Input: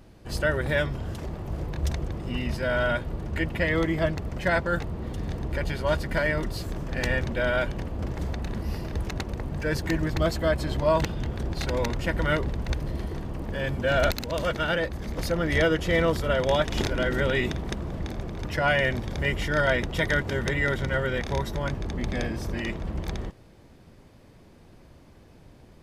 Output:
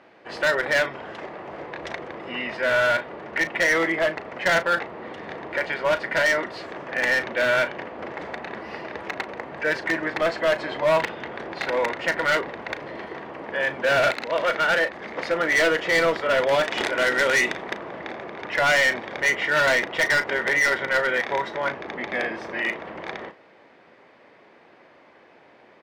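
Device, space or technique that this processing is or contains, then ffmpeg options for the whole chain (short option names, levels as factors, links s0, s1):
megaphone: -filter_complex "[0:a]highpass=510,lowpass=2600,equalizer=f=2000:t=o:w=0.55:g=5,asoftclip=type=hard:threshold=0.0631,asplit=2[s0][s1];[s1]adelay=36,volume=0.237[s2];[s0][s2]amix=inputs=2:normalize=0,asettb=1/sr,asplit=3[s3][s4][s5];[s3]atrim=end=16.634[s6];[s4]atrim=start=16.63:end=17.64,asetpts=PTS-STARTPTS,afade=t=in:d=0.004:c=qsin,afade=t=out:st=1.006:d=0.004:c=qsin,equalizer=f=8600:t=o:w=1.5:g=7.5[s7];[s5]atrim=start=17.636[s8];[s6][s7]acrossfade=d=0.004:c1=hsin:c2=qsin[s9];[s9][s8]acrossfade=d=0.004:c1=qsin:c2=hsin,volume=2.37"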